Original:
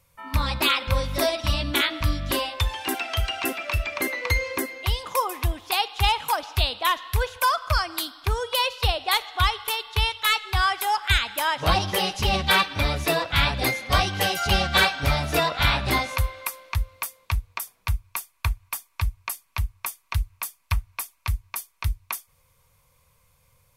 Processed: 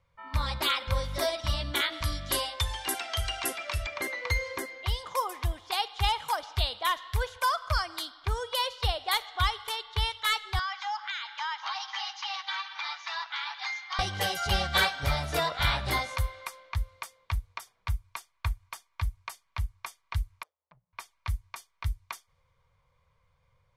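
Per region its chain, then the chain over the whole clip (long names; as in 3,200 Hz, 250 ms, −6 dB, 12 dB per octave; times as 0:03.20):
0:01.92–0:03.87: linear-phase brick-wall low-pass 12,000 Hz + high-shelf EQ 5,200 Hz +10 dB + mains-hum notches 50/100/150 Hz
0:10.59–0:13.99: Chebyshev band-pass filter 820–6,600 Hz, order 5 + downward compressor 10 to 1, threshold −23 dBFS
0:20.43–0:20.93: downward compressor, threshold −27 dBFS + ring modulation 79 Hz + resonant band-pass 530 Hz, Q 3.6
whole clip: notch filter 2,600 Hz, Q 8.1; low-pass that shuts in the quiet parts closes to 2,900 Hz, open at −19.5 dBFS; parametric band 260 Hz −7.5 dB 0.9 octaves; level −5 dB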